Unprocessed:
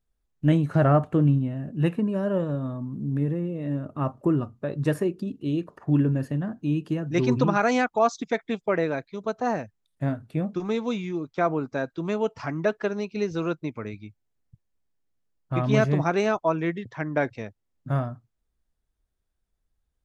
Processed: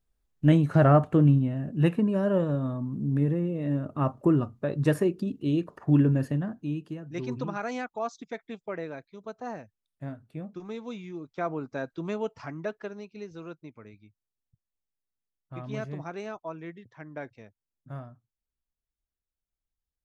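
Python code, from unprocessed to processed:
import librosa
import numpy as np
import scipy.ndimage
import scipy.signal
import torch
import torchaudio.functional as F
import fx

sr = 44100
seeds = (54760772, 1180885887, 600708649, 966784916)

y = fx.gain(x, sr, db=fx.line((6.29, 0.5), (7.0, -11.0), (10.78, -11.0), (12.01, -4.0), (13.28, -14.0)))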